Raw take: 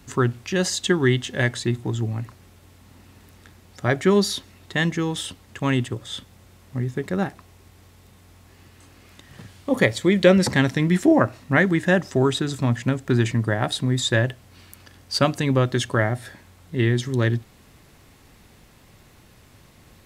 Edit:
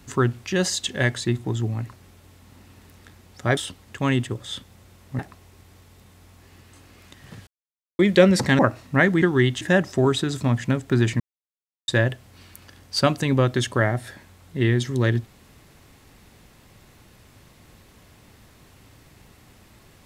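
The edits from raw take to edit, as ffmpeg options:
-filter_complex "[0:a]asplit=11[s0][s1][s2][s3][s4][s5][s6][s7][s8][s9][s10];[s0]atrim=end=0.892[s11];[s1]atrim=start=1.278:end=3.962[s12];[s2]atrim=start=5.178:end=6.802[s13];[s3]atrim=start=7.258:end=9.54,asetpts=PTS-STARTPTS,afade=t=out:st=2.278:d=0.004:c=hsin[s14];[s4]atrim=start=9.54:end=10.06,asetpts=PTS-STARTPTS,volume=0[s15];[s5]atrim=start=10.06:end=10.662,asetpts=PTS-STARTPTS,afade=t=in:d=0.004:c=hsin[s16];[s6]atrim=start=11.158:end=11.792[s17];[s7]atrim=start=0.888:end=1.282[s18];[s8]atrim=start=11.788:end=13.38,asetpts=PTS-STARTPTS,afade=t=out:st=1.588:d=0.004:c=hsin[s19];[s9]atrim=start=13.38:end=14.06,asetpts=PTS-STARTPTS,volume=0[s20];[s10]atrim=start=14.06,asetpts=PTS-STARTPTS,afade=t=in:d=0.004:c=hsin[s21];[s11][s12]acrossfade=d=0.004:c1=hsin:c2=hsin[s22];[s22][s13]acrossfade=d=0.004:c1=hsin:c2=hsin[s23];[s14][s15][s16]concat=n=3:v=0:a=1[s24];[s23][s24]acrossfade=d=0.004:c1=hsin:c2=hsin[s25];[s25][s17]acrossfade=d=0.004:c1=hsin:c2=hsin[s26];[s26][s18]acrossfade=d=0.004:c1=hsin:c2=hsin[s27];[s19][s20][s21]concat=n=3:v=0:a=1[s28];[s27][s28]acrossfade=d=0.004:c1=hsin:c2=hsin"

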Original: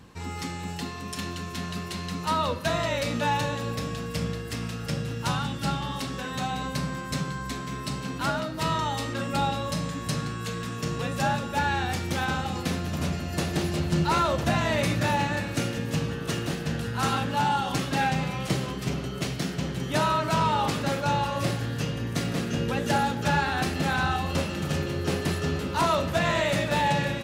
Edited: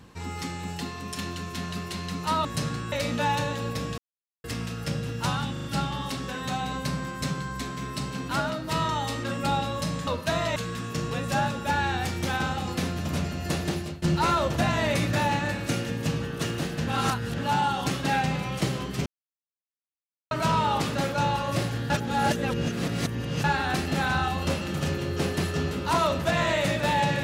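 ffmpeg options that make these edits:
-filter_complex "[0:a]asplit=17[s0][s1][s2][s3][s4][s5][s6][s7][s8][s9][s10][s11][s12][s13][s14][s15][s16];[s0]atrim=end=2.452[s17];[s1]atrim=start=9.968:end=10.442[s18];[s2]atrim=start=2.938:end=4,asetpts=PTS-STARTPTS,afade=t=out:st=1.058:d=0.004:c=hsin[s19];[s3]atrim=start=4:end=4.46,asetpts=PTS-STARTPTS,volume=0[s20];[s4]atrim=start=4.46:end=5.582,asetpts=PTS-STARTPTS,afade=t=in:d=0.004:c=hsin[s21];[s5]atrim=start=5.538:end=5.582[s22];[s6]atrim=start=5.538:end=5.582[s23];[s7]atrim=start=5.538:end=9.972[s24];[s8]atrim=start=2.448:end=2.942[s25];[s9]atrim=start=10.438:end=13.9,asetpts=PTS-STARTPTS,afade=t=out:st=2.942:d=0.52:c=qsin:silence=0.1[s26];[s10]atrim=start=13.9:end=16.752,asetpts=PTS-STARTPTS,afade=t=in:d=0.004:c=hsin:silence=0.1[s27];[s11]atrim=start=16.748:end=17.262,asetpts=PTS-STARTPTS,areverse[s28];[s12]atrim=start=17.258:end=18.94,asetpts=PTS-STARTPTS,afade=t=out:st=1.678:d=0.004:c=hsin[s29];[s13]atrim=start=18.94:end=20.19,asetpts=PTS-STARTPTS,volume=0[s30];[s14]atrim=start=20.19:end=21.782,asetpts=PTS-STARTPTS,afade=t=in:d=0.004:c=hsin[s31];[s15]atrim=start=21.778:end=23.322,asetpts=PTS-STARTPTS,areverse[s32];[s16]atrim=start=23.318[s33];[s17][s18]acrossfade=d=0.004:c1=hsin:c2=hsin[s34];[s19][s20][s21]concat=n=3:v=0:a=1[s35];[s34][s35]acrossfade=d=0.004:c1=hsin:c2=hsin[s36];[s36][s22]acrossfade=d=0.004:c1=hsin:c2=hsin[s37];[s37][s23]acrossfade=d=0.004:c1=hsin:c2=hsin[s38];[s38][s24]acrossfade=d=0.004:c1=hsin:c2=hsin[s39];[s39][s25]acrossfade=d=0.004:c1=hsin:c2=hsin[s40];[s26][s27]concat=n=2:v=0:a=1[s41];[s40][s41]acrossfade=d=0.004:c1=hsin:c2=hsin[s42];[s42][s28]acrossfade=d=0.004:c1=hsin:c2=hsin[s43];[s29][s30][s31]concat=n=3:v=0:a=1[s44];[s43][s44]acrossfade=d=0.004:c1=hsin:c2=hsin[s45];[s45][s32]acrossfade=d=0.004:c1=hsin:c2=hsin[s46];[s46][s33]acrossfade=d=0.004:c1=hsin:c2=hsin"

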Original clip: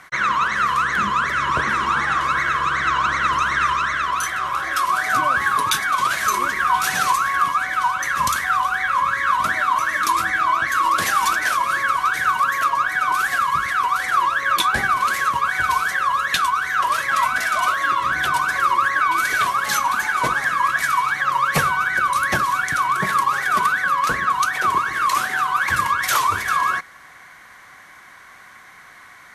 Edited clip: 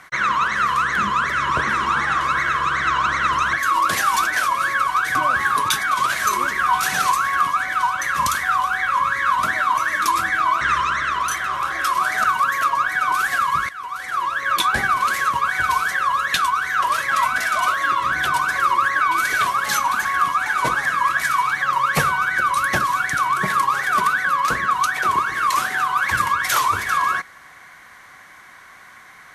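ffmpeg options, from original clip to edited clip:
-filter_complex "[0:a]asplit=8[s0][s1][s2][s3][s4][s5][s6][s7];[s0]atrim=end=3.532[s8];[s1]atrim=start=10.618:end=12.242[s9];[s2]atrim=start=5.158:end=10.622[s10];[s3]atrim=start=3.528:end=5.162[s11];[s4]atrim=start=12.238:end=13.69,asetpts=PTS-STARTPTS,afade=t=out:st=1.448:d=0.004:c=hsin:silence=0.149624[s12];[s5]atrim=start=13.69:end=20.052,asetpts=PTS-STARTPTS,afade=t=in:d=0.98:silence=0.149624[s13];[s6]atrim=start=7.248:end=7.662[s14];[s7]atrim=start=20.048[s15];[s8][s9]acrossfade=d=0.004:c1=hsin:c2=hsin[s16];[s16][s10]acrossfade=d=0.004:c1=hsin:c2=hsin[s17];[s17][s11]acrossfade=d=0.004:c1=hsin:c2=hsin[s18];[s12][s13]concat=n=2:v=0:a=1[s19];[s18][s19]acrossfade=d=0.004:c1=hsin:c2=hsin[s20];[s20][s14]acrossfade=d=0.004:c1=hsin:c2=hsin[s21];[s21][s15]acrossfade=d=0.004:c1=hsin:c2=hsin"

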